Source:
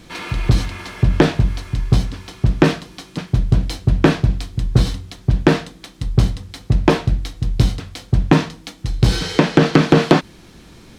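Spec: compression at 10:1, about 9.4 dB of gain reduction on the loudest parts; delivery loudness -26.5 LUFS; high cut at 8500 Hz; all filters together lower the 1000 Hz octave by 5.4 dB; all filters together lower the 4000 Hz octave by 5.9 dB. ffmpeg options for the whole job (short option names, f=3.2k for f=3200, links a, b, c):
-af "lowpass=8.5k,equalizer=f=1k:t=o:g=-7,equalizer=f=4k:t=o:g=-7,acompressor=threshold=-18dB:ratio=10"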